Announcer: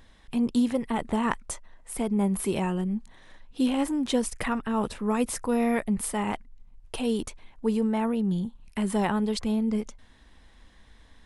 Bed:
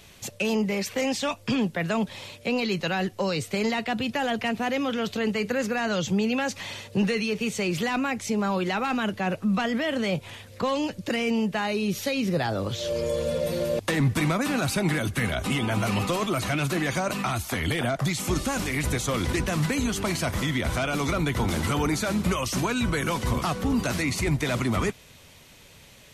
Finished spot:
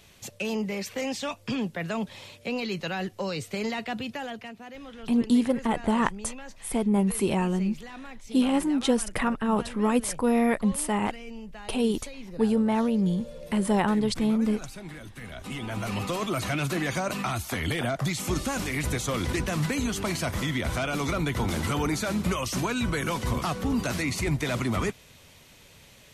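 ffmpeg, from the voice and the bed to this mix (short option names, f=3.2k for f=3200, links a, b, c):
-filter_complex "[0:a]adelay=4750,volume=2dB[a];[1:a]volume=10dB,afade=t=out:st=3.93:d=0.62:silence=0.251189,afade=t=in:st=15.2:d=1.18:silence=0.188365[b];[a][b]amix=inputs=2:normalize=0"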